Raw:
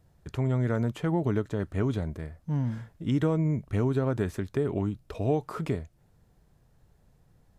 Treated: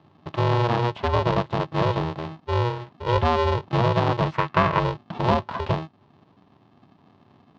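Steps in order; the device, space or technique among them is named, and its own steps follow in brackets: ring modulator pedal into a guitar cabinet (polarity switched at an audio rate 240 Hz; speaker cabinet 88–4100 Hz, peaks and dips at 100 Hz +6 dB, 150 Hz +5 dB, 350 Hz -3 dB, 990 Hz +8 dB, 1500 Hz -4 dB, 2200 Hz -5 dB); 4.32–4.8 band shelf 1600 Hz +9 dB; gain +4.5 dB

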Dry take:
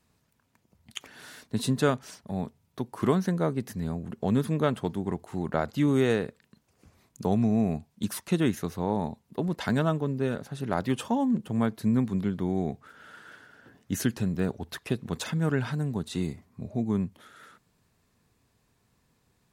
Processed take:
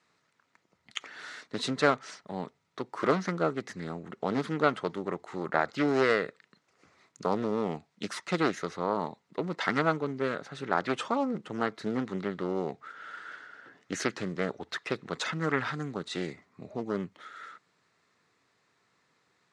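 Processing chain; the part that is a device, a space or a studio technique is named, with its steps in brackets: full-range speaker at full volume (Doppler distortion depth 0.53 ms; speaker cabinet 230–7400 Hz, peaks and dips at 230 Hz -7 dB, 1300 Hz +8 dB, 2000 Hz +8 dB, 4000 Hz +3 dB)

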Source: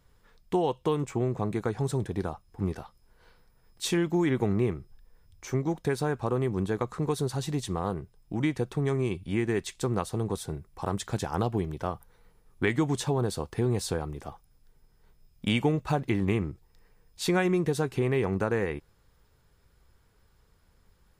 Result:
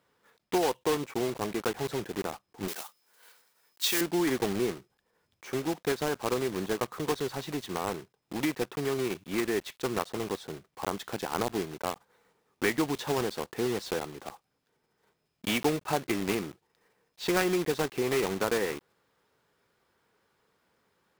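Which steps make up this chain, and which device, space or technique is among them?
early digital voice recorder (BPF 260–3900 Hz; block floating point 3-bit); 2.68–4.01 tilt +4 dB/oct

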